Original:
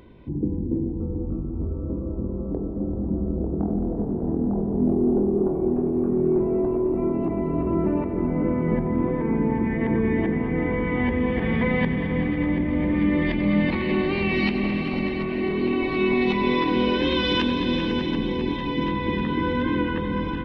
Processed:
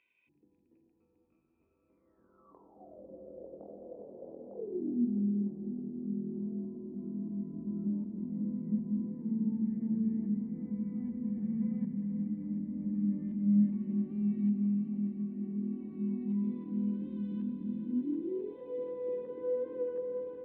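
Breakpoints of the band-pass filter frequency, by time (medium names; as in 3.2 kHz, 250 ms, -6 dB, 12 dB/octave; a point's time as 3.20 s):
band-pass filter, Q 16
1.89 s 2.5 kHz
3.05 s 550 Hz
4.51 s 550 Hz
5.09 s 210 Hz
17.79 s 210 Hz
18.61 s 490 Hz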